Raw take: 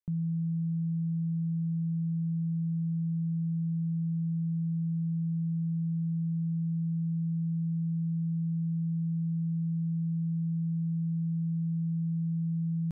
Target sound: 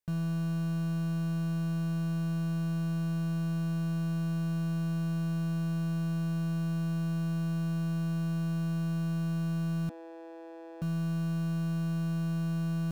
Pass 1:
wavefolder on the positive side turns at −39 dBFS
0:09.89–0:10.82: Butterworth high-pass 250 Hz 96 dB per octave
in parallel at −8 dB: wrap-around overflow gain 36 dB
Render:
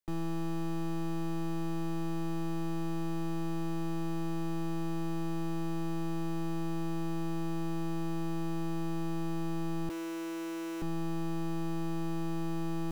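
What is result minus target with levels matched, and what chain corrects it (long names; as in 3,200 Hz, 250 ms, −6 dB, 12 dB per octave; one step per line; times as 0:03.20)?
wavefolder on the positive side: distortion +23 dB
wavefolder on the positive side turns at −29 dBFS
0:09.89–0:10.82: Butterworth high-pass 250 Hz 96 dB per octave
in parallel at −8 dB: wrap-around overflow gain 36 dB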